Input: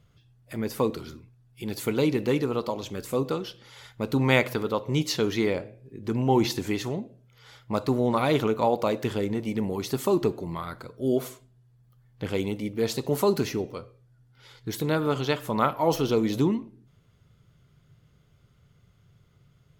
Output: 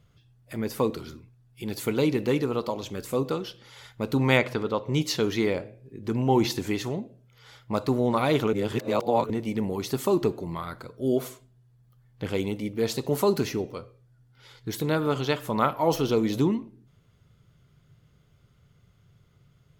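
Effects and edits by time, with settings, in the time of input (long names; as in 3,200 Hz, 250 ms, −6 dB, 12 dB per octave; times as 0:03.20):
0:04.37–0:04.94: high-frequency loss of the air 56 metres
0:08.53–0:09.30: reverse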